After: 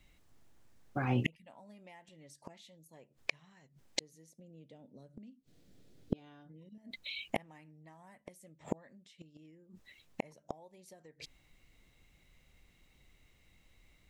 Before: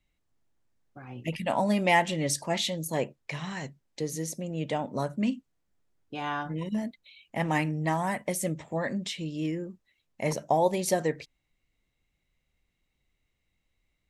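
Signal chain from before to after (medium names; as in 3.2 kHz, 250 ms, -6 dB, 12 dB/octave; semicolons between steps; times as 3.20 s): 4.39–6.78 s: graphic EQ 125/250/500/1000/4000 Hz +8/+8/+8/-8/+7 dB; compression 4:1, threshold -26 dBFS, peak gain reduction 11.5 dB; inverted gate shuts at -28 dBFS, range -38 dB; trim +11.5 dB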